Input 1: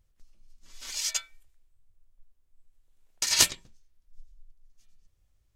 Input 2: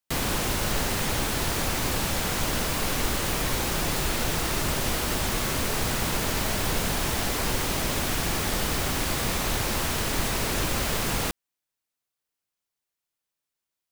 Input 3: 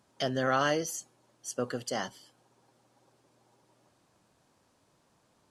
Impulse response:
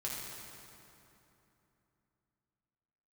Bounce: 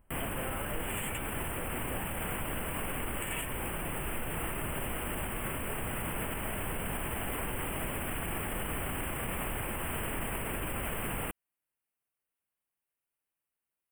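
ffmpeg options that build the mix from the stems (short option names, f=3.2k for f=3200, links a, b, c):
-filter_complex "[0:a]acompressor=threshold=-29dB:ratio=6,volume=3dB[a];[1:a]alimiter=limit=-22dB:level=0:latency=1:release=60,volume=-2.5dB[b];[2:a]acompressor=threshold=-33dB:ratio=6,volume=-5dB[c];[a][b][c]amix=inputs=3:normalize=0,asuperstop=centerf=5100:order=12:qfactor=1,alimiter=level_in=1dB:limit=-24dB:level=0:latency=1:release=165,volume=-1dB"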